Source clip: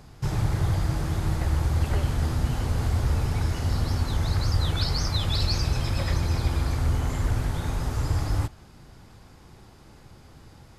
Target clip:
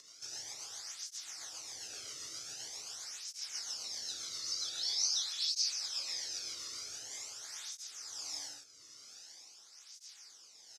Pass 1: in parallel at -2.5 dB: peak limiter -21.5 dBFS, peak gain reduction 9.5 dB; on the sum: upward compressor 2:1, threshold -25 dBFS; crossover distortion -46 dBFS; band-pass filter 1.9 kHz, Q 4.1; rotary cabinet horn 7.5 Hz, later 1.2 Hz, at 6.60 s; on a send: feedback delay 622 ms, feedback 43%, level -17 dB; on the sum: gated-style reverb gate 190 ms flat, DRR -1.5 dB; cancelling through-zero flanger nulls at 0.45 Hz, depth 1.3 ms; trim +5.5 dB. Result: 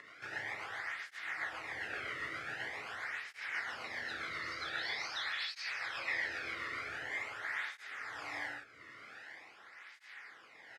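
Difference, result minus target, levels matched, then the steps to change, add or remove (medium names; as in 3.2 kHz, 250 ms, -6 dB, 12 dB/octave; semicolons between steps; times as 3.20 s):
2 kHz band +19.5 dB
change: band-pass filter 5.9 kHz, Q 4.1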